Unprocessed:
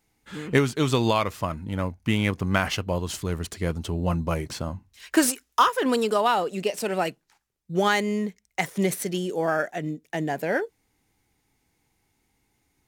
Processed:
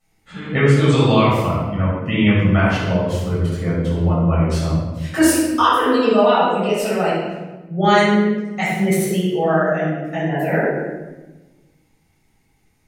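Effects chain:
gate on every frequency bin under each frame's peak −30 dB strong
0:02.38–0:04.50: parametric band 9,100 Hz −9 dB 2.8 octaves
rectangular room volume 720 cubic metres, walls mixed, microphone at 6.5 metres
level −5.5 dB

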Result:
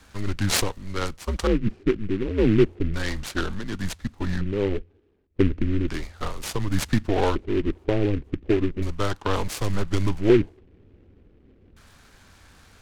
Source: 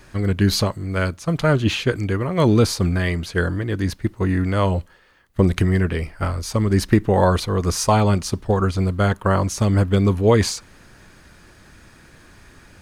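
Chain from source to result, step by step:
frequency shifter −100 Hz
auto-filter low-pass square 0.34 Hz 380–4,800 Hz
short delay modulated by noise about 1,900 Hz, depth 0.053 ms
level −5.5 dB

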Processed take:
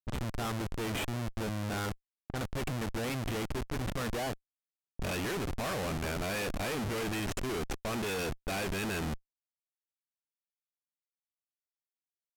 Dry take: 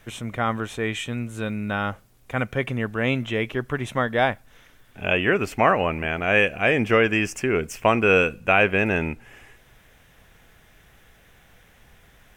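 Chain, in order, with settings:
comparator with hysteresis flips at −29.5 dBFS
low-pass that shuts in the quiet parts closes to 350 Hz, open at −24 dBFS
level −9 dB

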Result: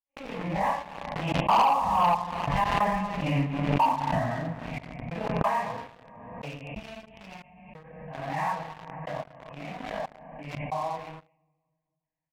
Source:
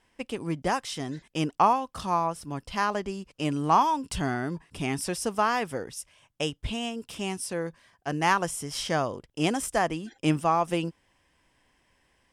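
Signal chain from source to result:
random phases in long frames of 200 ms
source passing by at 0:02.70, 20 m/s, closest 21 metres
far-end echo of a speakerphone 230 ms, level −13 dB
gate pattern ".xxxx..x" 91 BPM −60 dB
low-pass filter 2,100 Hz 24 dB per octave
low-shelf EQ 340 Hz −4.5 dB
phaser with its sweep stopped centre 1,400 Hz, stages 6
rectangular room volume 2,800 cubic metres, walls mixed, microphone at 0.63 metres
leveller curve on the samples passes 3
background raised ahead of every attack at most 36 dB per second

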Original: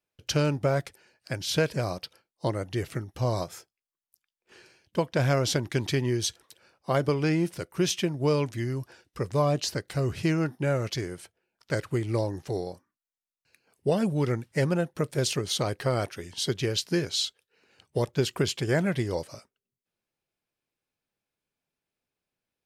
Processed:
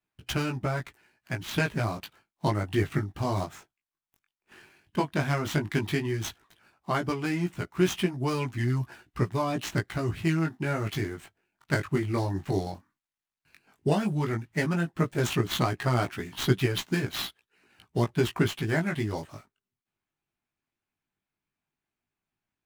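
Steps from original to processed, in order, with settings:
running median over 9 samples
parametric band 510 Hz −14.5 dB 0.44 octaves
speech leveller within 4 dB 0.5 s
chorus effect 0.12 Hz, delay 16 ms, depth 4.9 ms
harmonic and percussive parts rebalanced harmonic −5 dB
level +8.5 dB

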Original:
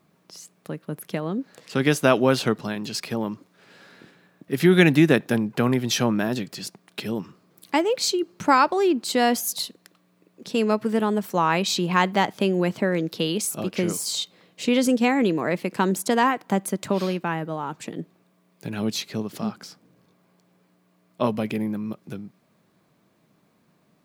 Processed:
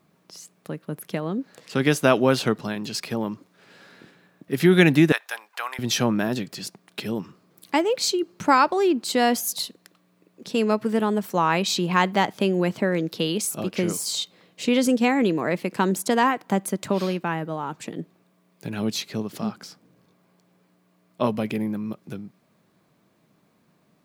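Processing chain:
0:05.12–0:05.79: high-pass filter 830 Hz 24 dB per octave

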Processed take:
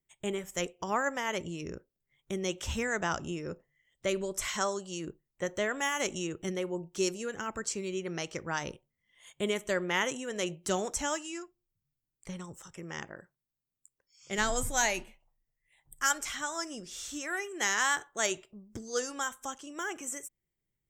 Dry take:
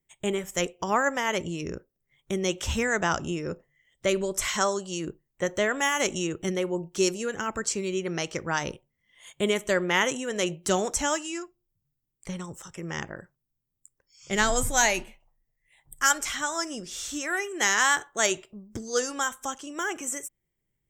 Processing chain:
0:12.83–0:14.38: low-shelf EQ 110 Hz −10 dB
level −6 dB

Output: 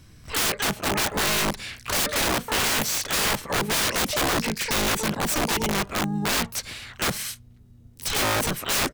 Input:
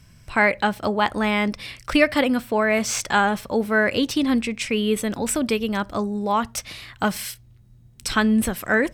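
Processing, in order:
pitch-shifted copies added −5 semitones −4 dB, +12 semitones −7 dB
wrap-around overflow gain 16.5 dB
level −1.5 dB

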